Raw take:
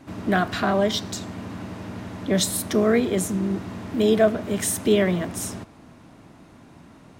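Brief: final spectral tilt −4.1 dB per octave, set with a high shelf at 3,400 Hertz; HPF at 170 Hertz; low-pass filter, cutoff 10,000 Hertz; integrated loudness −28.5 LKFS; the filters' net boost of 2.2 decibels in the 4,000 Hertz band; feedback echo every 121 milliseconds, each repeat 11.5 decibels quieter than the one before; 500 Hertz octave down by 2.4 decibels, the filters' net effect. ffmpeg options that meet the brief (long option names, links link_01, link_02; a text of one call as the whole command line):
ffmpeg -i in.wav -af "highpass=170,lowpass=10000,equalizer=frequency=500:width_type=o:gain=-3,highshelf=frequency=3400:gain=-3.5,equalizer=frequency=4000:width_type=o:gain=5,aecho=1:1:121|242|363:0.266|0.0718|0.0194,volume=-4dB" out.wav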